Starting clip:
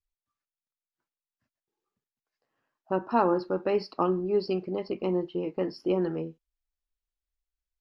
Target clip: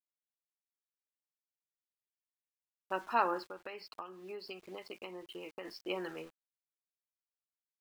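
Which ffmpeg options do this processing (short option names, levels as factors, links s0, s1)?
-filter_complex "[0:a]bandpass=f=2400:t=q:w=1.2:csg=0,aeval=exprs='val(0)*gte(abs(val(0)),0.00126)':c=same,asplit=3[s0][s1][s2];[s0]afade=t=out:st=3.46:d=0.02[s3];[s1]acompressor=threshold=0.00501:ratio=16,afade=t=in:st=3.46:d=0.02,afade=t=out:st=5.64:d=0.02[s4];[s2]afade=t=in:st=5.64:d=0.02[s5];[s3][s4][s5]amix=inputs=3:normalize=0,volume=1.68"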